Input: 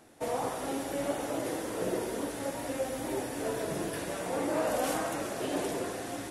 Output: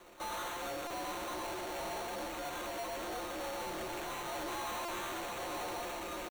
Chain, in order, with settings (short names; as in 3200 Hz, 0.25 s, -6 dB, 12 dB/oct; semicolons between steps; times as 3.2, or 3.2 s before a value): pitch shift +7.5 st; ring modulator 130 Hz; comb 5.7 ms, depth 82%; sample-rate reducer 5000 Hz, jitter 0%; soft clip -40 dBFS, distortion -6 dB; bell 160 Hz -8.5 dB 0.43 oct; stuck buffer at 0.87/4.85, samples 128, times 10; gain +2.5 dB